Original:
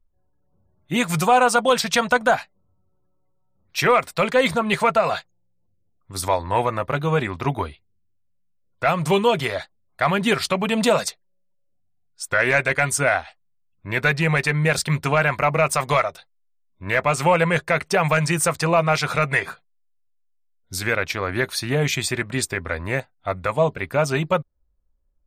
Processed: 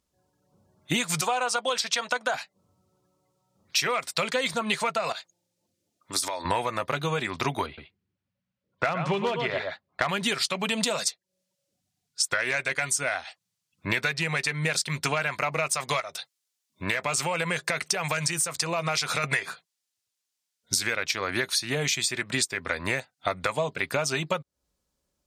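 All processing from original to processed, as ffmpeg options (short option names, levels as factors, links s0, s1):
-filter_complex "[0:a]asettb=1/sr,asplit=3[s0][s1][s2];[s0]atrim=end=1.214[s3];[s1]atrim=start=1.21:end=2.34,asetpts=PTS-STARTPTS,afade=t=in:d=0.004:c=qsin,afade=t=out:st=1.126:d=0.004:c=qsin,highpass=340,highshelf=f=6800:g=-9[s4];[s2]atrim=start=2.336[s5];[s3][s4]acrossfade=d=0.004:c1=hsin:c2=qsin[s6];[s6][s5]acrossfade=d=0.004:c1=qsin:c2=hsin,asettb=1/sr,asplit=3[s7][s8][s9];[s7]atrim=end=5.124[s10];[s8]atrim=start=5.12:end=6.45,asetpts=PTS-STARTPTS,afade=t=in:d=0.004:c=qsin,afade=t=out:st=1.326:d=0.004:c=qsin,highpass=f=250:p=1,aecho=1:1:3.3:0.3,atrim=end_sample=58653,acompressor=threshold=0.0178:ratio=5:attack=3.2:release=140:knee=1:detection=peak[s11];[s9]atrim=start=6.446[s12];[s10][s11]acrossfade=d=0.004:c1=hsin:c2=qsin[s13];[s13][s12]acrossfade=d=0.004:c1=qsin:c2=hsin,asettb=1/sr,asplit=3[s14][s15][s16];[s14]atrim=end=7.664[s17];[s15]atrim=start=7.66:end=10.09,asetpts=PTS-STARTPTS,afade=t=in:d=0.004:c=qsin,afade=t=out:st=2.426:d=0.004:c=qsin,lowpass=2100,aecho=1:1:115:0.376,atrim=end_sample=107163,aeval=exprs='clip(val(0),-1,0.2)':c=same[s18];[s16]atrim=start=10.086[s19];[s17][s18]acrossfade=d=0.004:c1=hsin:c2=qsin[s20];[s20][s19]acrossfade=d=0.004:c1=qsin:c2=hsin,asettb=1/sr,asplit=3[s21][s22][s23];[s21]atrim=end=16.004[s24];[s22]atrim=start=16:end=19.24,asetpts=PTS-STARTPTS,afade=t=in:d=0.004:c=qsin,afade=t=out:st=3.236:d=0.004:c=qsin,highshelf=f=9200:g=4,acompressor=threshold=0.0316:ratio=2:attack=3.2:release=140:knee=1:detection=peak[s25];[s23]atrim=start=19.236[s26];[s24][s25]acrossfade=d=0.004:c1=hsin:c2=qsin[s27];[s27][s26]acrossfade=d=0.004:c1=qsin:c2=hsin,highpass=130,equalizer=f=5900:t=o:w=2.5:g=12.5,acompressor=threshold=0.0398:ratio=16,volume=1.78"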